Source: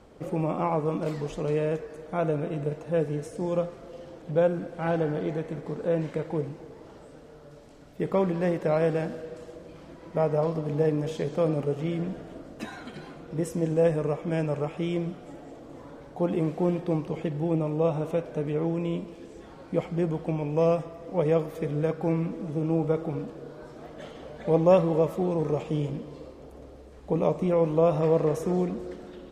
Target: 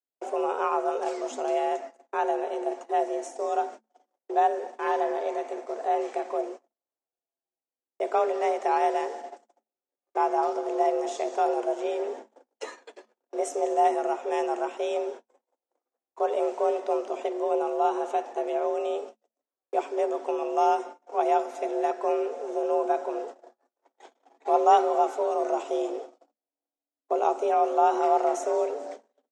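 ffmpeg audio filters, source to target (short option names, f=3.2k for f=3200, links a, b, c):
-af "aexciter=amount=4.1:drive=3.3:freq=5.6k,agate=range=-51dB:threshold=-38dB:ratio=16:detection=peak,afreqshift=220,lowpass=f=7.4k:w=0.5412,lowpass=f=7.4k:w=1.3066"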